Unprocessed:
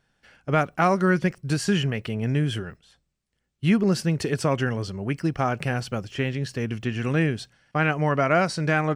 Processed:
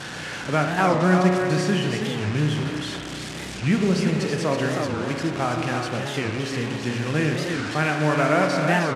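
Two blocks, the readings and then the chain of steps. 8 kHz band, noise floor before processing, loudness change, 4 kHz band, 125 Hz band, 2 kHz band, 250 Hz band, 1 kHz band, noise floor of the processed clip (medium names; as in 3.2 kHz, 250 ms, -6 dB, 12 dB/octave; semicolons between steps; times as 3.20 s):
+3.5 dB, -76 dBFS, +1.5 dB, +4.5 dB, +0.5 dB, +2.5 dB, +2.0 dB, +2.0 dB, -34 dBFS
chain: one-bit delta coder 64 kbps, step -26.5 dBFS; band-pass 110–7100 Hz; on a send: delay 327 ms -6 dB; on the sum: spring tank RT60 2.5 s, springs 33 ms, chirp 75 ms, DRR 2.5 dB; warped record 45 rpm, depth 250 cents; trim -1 dB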